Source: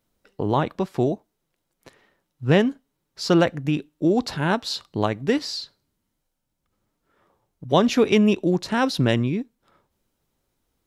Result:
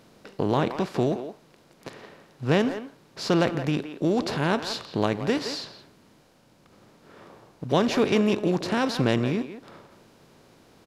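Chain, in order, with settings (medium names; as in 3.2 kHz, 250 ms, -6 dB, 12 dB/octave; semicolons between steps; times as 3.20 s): spectral levelling over time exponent 0.6; speakerphone echo 170 ms, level -9 dB; trim -6.5 dB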